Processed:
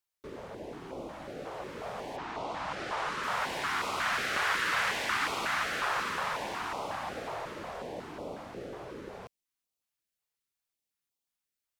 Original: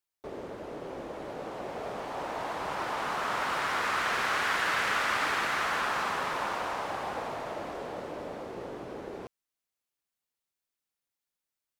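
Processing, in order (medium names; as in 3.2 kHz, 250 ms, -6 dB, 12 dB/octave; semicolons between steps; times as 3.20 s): 2.16–3.22 s: low-pass 4.9 kHz -> 10 kHz 12 dB/octave; step-sequenced notch 5.5 Hz 240–1700 Hz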